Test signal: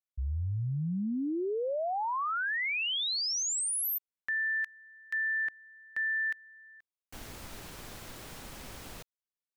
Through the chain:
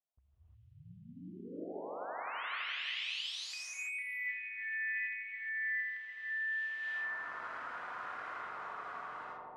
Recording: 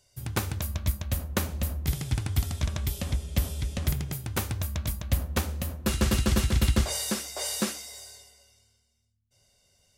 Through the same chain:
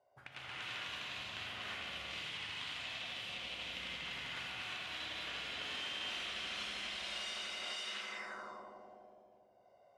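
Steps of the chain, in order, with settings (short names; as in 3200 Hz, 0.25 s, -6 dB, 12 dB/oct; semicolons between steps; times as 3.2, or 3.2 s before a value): limiter -21 dBFS; high shelf 2300 Hz -8.5 dB; echoes that change speed 0.168 s, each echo +2 st, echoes 3; bell 1300 Hz +5.5 dB 2.4 oct; darkening echo 83 ms, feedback 81%, low-pass 2300 Hz, level -4 dB; auto-wah 680–3000 Hz, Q 3.2, up, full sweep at -30.5 dBFS; LPF 9600 Hz 12 dB/oct; compressor 4:1, threshold -51 dBFS; non-linear reverb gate 0.37 s rising, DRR -6.5 dB; gain +3.5 dB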